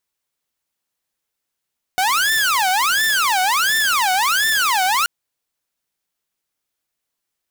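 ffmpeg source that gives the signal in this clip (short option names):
-f lavfi -i "aevalsrc='0.237*(2*mod((1258.5*t-521.5/(2*PI*1.4)*sin(2*PI*1.4*t)),1)-1)':d=3.08:s=44100"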